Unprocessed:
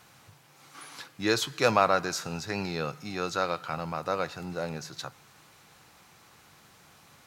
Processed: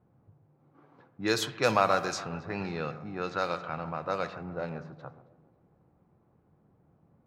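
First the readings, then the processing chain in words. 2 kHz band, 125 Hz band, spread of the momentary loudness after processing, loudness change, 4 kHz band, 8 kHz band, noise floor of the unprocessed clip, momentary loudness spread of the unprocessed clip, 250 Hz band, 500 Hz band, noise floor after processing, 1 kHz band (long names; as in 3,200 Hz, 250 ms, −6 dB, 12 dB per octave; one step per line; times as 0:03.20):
−2.0 dB, −1.5 dB, 13 LU, −1.5 dB, −3.0 dB, −4.0 dB, −58 dBFS, 18 LU, −1.5 dB, −1.5 dB, −67 dBFS, −1.5 dB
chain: delay that swaps between a low-pass and a high-pass 137 ms, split 1,800 Hz, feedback 67%, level −13 dB
spring reverb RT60 1.3 s, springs 46 ms, chirp 50 ms, DRR 13.5 dB
low-pass that shuts in the quiet parts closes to 390 Hz, open at −22.5 dBFS
level −2 dB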